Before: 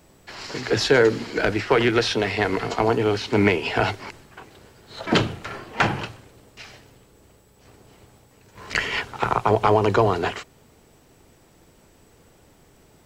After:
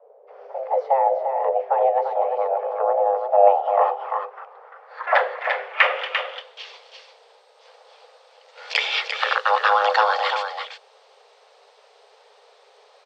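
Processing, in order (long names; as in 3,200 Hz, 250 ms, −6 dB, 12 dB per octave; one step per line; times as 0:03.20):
multi-tap delay 257/345 ms −20/−7 dB
frequency shifter +400 Hz
low-pass filter sweep 570 Hz → 4,300 Hz, 0:03.24–0:06.87
level −1 dB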